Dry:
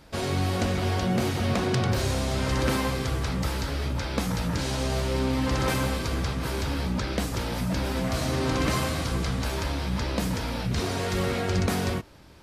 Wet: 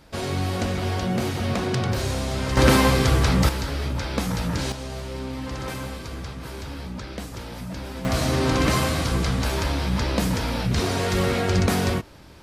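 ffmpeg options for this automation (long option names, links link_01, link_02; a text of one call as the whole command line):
ffmpeg -i in.wav -af "asetnsamples=nb_out_samples=441:pad=0,asendcmd='2.57 volume volume 9dB;3.49 volume volume 2dB;4.72 volume volume -6dB;8.05 volume volume 4.5dB',volume=0.5dB" out.wav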